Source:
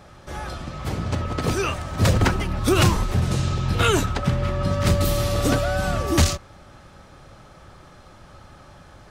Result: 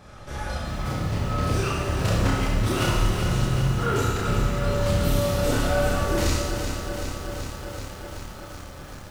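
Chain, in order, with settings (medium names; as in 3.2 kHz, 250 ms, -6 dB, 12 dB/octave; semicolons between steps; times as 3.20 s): 3.42–3.96 s: steep low-pass 1.7 kHz 36 dB/octave; in parallel at -0.5 dB: compression, threshold -29 dBFS, peak gain reduction 15.5 dB; on the sum: saturation -15.5 dBFS, distortion -13 dB; chorus voices 4, 0.66 Hz, delay 29 ms, depth 1.1 ms; Schroeder reverb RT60 1.3 s, combs from 26 ms, DRR -1 dB; bit-crushed delay 380 ms, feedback 80%, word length 7-bit, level -8 dB; trim -3.5 dB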